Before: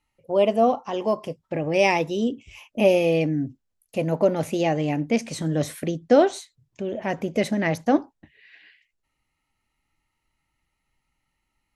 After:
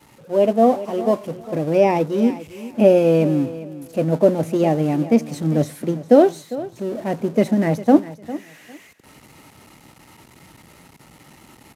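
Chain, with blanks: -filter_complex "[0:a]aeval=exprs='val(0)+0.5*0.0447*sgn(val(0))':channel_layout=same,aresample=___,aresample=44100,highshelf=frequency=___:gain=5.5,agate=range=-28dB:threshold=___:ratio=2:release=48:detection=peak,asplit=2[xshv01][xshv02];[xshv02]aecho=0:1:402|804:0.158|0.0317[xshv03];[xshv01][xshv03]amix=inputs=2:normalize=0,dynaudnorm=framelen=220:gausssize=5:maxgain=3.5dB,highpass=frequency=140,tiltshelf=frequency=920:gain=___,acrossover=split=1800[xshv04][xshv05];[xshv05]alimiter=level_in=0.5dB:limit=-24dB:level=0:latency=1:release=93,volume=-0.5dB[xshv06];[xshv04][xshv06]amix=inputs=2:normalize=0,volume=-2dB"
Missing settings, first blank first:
32000, 4.7k, -18dB, 7.5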